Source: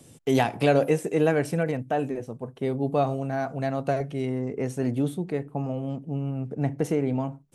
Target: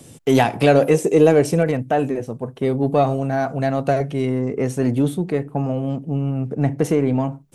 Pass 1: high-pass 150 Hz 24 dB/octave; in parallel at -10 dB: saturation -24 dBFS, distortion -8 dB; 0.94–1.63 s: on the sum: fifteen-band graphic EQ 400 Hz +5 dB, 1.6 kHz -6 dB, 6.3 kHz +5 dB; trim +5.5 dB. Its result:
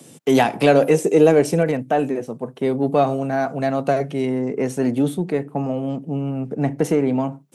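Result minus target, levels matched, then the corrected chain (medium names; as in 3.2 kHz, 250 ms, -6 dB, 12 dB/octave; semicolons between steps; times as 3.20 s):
125 Hz band -4.0 dB
in parallel at -10 dB: saturation -24 dBFS, distortion -8 dB; 0.94–1.63 s: on the sum: fifteen-band graphic EQ 400 Hz +5 dB, 1.6 kHz -6 dB, 6.3 kHz +5 dB; trim +5.5 dB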